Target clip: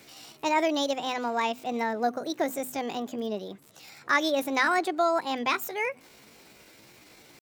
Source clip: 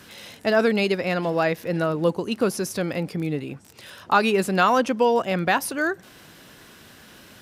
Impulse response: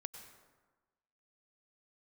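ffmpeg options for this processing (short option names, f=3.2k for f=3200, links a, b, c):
-af "bandreject=f=60:t=h:w=6,bandreject=f=120:t=h:w=6,bandreject=f=180:t=h:w=6,asetrate=62367,aresample=44100,atempo=0.707107,volume=-5.5dB"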